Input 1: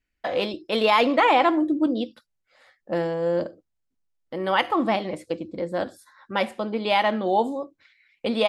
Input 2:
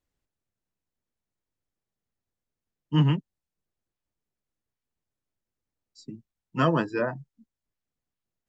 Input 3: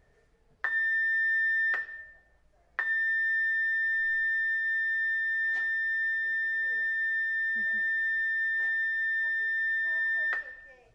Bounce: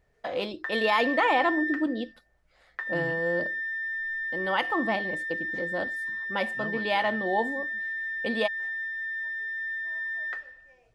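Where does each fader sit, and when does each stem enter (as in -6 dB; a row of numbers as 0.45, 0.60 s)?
-5.5, -18.5, -4.0 dB; 0.00, 0.00, 0.00 s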